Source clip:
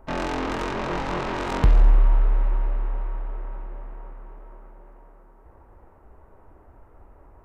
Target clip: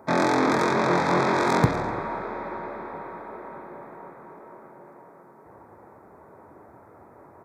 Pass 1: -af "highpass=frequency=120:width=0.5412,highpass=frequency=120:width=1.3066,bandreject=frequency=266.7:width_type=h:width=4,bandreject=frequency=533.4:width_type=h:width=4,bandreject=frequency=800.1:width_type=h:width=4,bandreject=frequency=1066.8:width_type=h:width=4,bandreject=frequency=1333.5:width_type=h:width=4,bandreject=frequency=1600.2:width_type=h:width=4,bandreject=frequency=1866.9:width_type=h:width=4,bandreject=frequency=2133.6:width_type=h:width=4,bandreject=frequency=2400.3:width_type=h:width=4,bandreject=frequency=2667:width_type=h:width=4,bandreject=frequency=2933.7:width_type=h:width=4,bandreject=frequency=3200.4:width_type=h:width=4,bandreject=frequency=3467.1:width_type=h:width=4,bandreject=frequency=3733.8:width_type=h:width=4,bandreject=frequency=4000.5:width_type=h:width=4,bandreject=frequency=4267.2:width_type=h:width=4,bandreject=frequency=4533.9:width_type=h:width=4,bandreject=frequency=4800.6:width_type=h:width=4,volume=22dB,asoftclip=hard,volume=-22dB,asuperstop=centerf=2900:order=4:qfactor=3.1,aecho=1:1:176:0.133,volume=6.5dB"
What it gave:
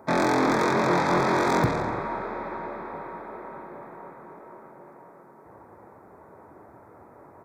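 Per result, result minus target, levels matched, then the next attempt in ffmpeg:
echo 72 ms late; gain into a clipping stage and back: distortion +20 dB
-af "highpass=frequency=120:width=0.5412,highpass=frequency=120:width=1.3066,bandreject=frequency=266.7:width_type=h:width=4,bandreject=frequency=533.4:width_type=h:width=4,bandreject=frequency=800.1:width_type=h:width=4,bandreject=frequency=1066.8:width_type=h:width=4,bandreject=frequency=1333.5:width_type=h:width=4,bandreject=frequency=1600.2:width_type=h:width=4,bandreject=frequency=1866.9:width_type=h:width=4,bandreject=frequency=2133.6:width_type=h:width=4,bandreject=frequency=2400.3:width_type=h:width=4,bandreject=frequency=2667:width_type=h:width=4,bandreject=frequency=2933.7:width_type=h:width=4,bandreject=frequency=3200.4:width_type=h:width=4,bandreject=frequency=3467.1:width_type=h:width=4,bandreject=frequency=3733.8:width_type=h:width=4,bandreject=frequency=4000.5:width_type=h:width=4,bandreject=frequency=4267.2:width_type=h:width=4,bandreject=frequency=4533.9:width_type=h:width=4,bandreject=frequency=4800.6:width_type=h:width=4,volume=22dB,asoftclip=hard,volume=-22dB,asuperstop=centerf=2900:order=4:qfactor=3.1,aecho=1:1:104:0.133,volume=6.5dB"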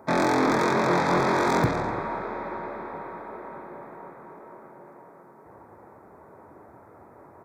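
gain into a clipping stage and back: distortion +20 dB
-af "highpass=frequency=120:width=0.5412,highpass=frequency=120:width=1.3066,bandreject=frequency=266.7:width_type=h:width=4,bandreject=frequency=533.4:width_type=h:width=4,bandreject=frequency=800.1:width_type=h:width=4,bandreject=frequency=1066.8:width_type=h:width=4,bandreject=frequency=1333.5:width_type=h:width=4,bandreject=frequency=1600.2:width_type=h:width=4,bandreject=frequency=1866.9:width_type=h:width=4,bandreject=frequency=2133.6:width_type=h:width=4,bandreject=frequency=2400.3:width_type=h:width=4,bandreject=frequency=2667:width_type=h:width=4,bandreject=frequency=2933.7:width_type=h:width=4,bandreject=frequency=3200.4:width_type=h:width=4,bandreject=frequency=3467.1:width_type=h:width=4,bandreject=frequency=3733.8:width_type=h:width=4,bandreject=frequency=4000.5:width_type=h:width=4,bandreject=frequency=4267.2:width_type=h:width=4,bandreject=frequency=4533.9:width_type=h:width=4,bandreject=frequency=4800.6:width_type=h:width=4,volume=13.5dB,asoftclip=hard,volume=-13.5dB,asuperstop=centerf=2900:order=4:qfactor=3.1,aecho=1:1:104:0.133,volume=6.5dB"

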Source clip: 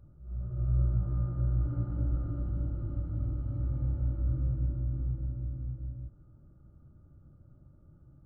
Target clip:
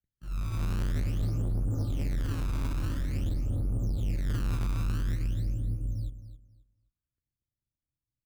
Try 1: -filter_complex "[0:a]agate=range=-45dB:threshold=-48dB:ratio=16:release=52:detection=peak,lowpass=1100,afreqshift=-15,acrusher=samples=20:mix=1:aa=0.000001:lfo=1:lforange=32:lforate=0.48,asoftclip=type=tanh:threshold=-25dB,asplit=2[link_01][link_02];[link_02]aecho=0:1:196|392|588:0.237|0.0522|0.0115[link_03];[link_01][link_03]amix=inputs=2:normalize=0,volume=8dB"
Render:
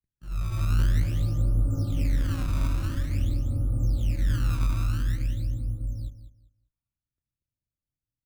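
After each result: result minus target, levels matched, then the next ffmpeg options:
soft clipping: distortion −9 dB; echo 71 ms early
-filter_complex "[0:a]agate=range=-45dB:threshold=-48dB:ratio=16:release=52:detection=peak,lowpass=1100,afreqshift=-15,acrusher=samples=20:mix=1:aa=0.000001:lfo=1:lforange=32:lforate=0.48,asoftclip=type=tanh:threshold=-35dB,asplit=2[link_01][link_02];[link_02]aecho=0:1:196|392|588:0.237|0.0522|0.0115[link_03];[link_01][link_03]amix=inputs=2:normalize=0,volume=8dB"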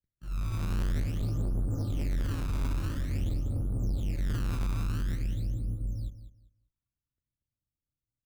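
echo 71 ms early
-filter_complex "[0:a]agate=range=-45dB:threshold=-48dB:ratio=16:release=52:detection=peak,lowpass=1100,afreqshift=-15,acrusher=samples=20:mix=1:aa=0.000001:lfo=1:lforange=32:lforate=0.48,asoftclip=type=tanh:threshold=-35dB,asplit=2[link_01][link_02];[link_02]aecho=0:1:267|534|801:0.237|0.0522|0.0115[link_03];[link_01][link_03]amix=inputs=2:normalize=0,volume=8dB"

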